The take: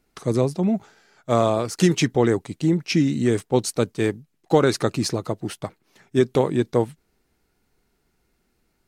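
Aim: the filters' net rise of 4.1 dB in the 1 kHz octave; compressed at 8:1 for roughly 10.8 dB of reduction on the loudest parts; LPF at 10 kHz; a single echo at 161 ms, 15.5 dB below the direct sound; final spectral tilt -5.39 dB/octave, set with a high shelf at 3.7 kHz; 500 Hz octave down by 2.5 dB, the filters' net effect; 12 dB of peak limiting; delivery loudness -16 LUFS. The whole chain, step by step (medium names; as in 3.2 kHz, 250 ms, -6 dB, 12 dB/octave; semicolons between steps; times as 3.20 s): low-pass 10 kHz; peaking EQ 500 Hz -5 dB; peaking EQ 1 kHz +7.5 dB; treble shelf 3.7 kHz -4 dB; compression 8:1, threshold -24 dBFS; peak limiter -23 dBFS; delay 161 ms -15.5 dB; trim +19 dB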